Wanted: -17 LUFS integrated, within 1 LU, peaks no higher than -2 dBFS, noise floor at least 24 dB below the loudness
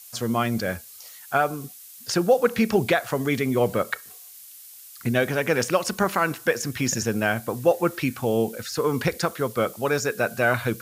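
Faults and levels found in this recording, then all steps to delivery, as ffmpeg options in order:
noise floor -45 dBFS; noise floor target -48 dBFS; loudness -24.0 LUFS; peak -8.0 dBFS; loudness target -17.0 LUFS
-> -af "afftdn=nr=6:nf=-45"
-af "volume=7dB,alimiter=limit=-2dB:level=0:latency=1"

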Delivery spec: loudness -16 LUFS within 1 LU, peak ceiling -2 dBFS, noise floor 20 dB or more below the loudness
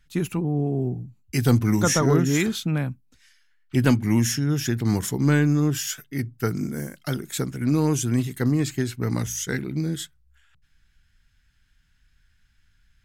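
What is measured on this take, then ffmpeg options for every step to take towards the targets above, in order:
loudness -24.0 LUFS; peak -7.5 dBFS; loudness target -16.0 LUFS
-> -af "volume=8dB,alimiter=limit=-2dB:level=0:latency=1"

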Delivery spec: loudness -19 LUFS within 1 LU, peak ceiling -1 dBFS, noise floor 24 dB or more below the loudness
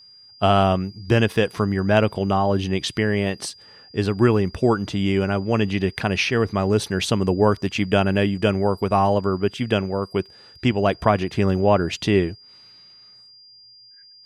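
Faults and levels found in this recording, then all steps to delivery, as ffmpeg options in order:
steady tone 4800 Hz; tone level -46 dBFS; loudness -21.0 LUFS; peak -4.0 dBFS; loudness target -19.0 LUFS
-> -af "bandreject=f=4.8k:w=30"
-af "volume=2dB"

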